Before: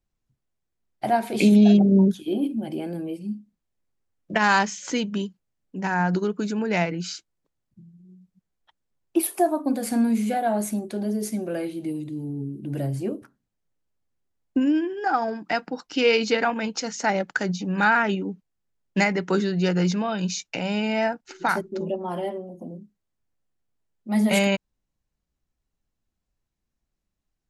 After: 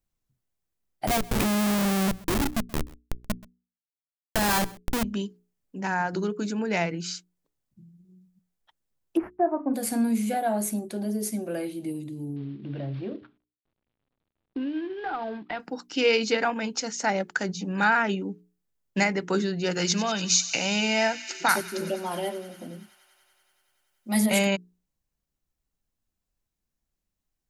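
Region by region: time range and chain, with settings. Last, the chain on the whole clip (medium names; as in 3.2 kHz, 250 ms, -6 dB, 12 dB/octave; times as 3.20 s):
1.07–5.04 s: Schmitt trigger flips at -23 dBFS + delay 129 ms -22 dB
9.17–9.74 s: CVSD coder 64 kbps + inverse Chebyshev low-pass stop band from 3.5 kHz + gate -41 dBFS, range -41 dB
12.36–15.60 s: CVSD coder 32 kbps + steep low-pass 3.8 kHz + compression 2.5:1, threshold -27 dBFS
19.71–24.26 s: treble shelf 2 kHz +11 dB + feedback echo behind a high-pass 95 ms, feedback 82%, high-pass 2 kHz, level -13.5 dB
whole clip: treble shelf 7.9 kHz +8.5 dB; hum notches 60/120/180/240/300/360/420 Hz; trim -2.5 dB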